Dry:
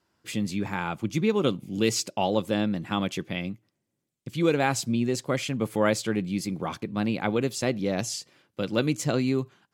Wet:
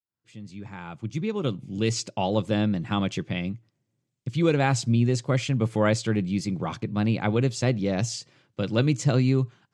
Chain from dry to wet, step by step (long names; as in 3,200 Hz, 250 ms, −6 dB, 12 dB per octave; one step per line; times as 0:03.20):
fade in at the beginning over 2.54 s
low-pass filter 8,200 Hz 24 dB per octave
parametric band 120 Hz +10.5 dB 0.76 octaves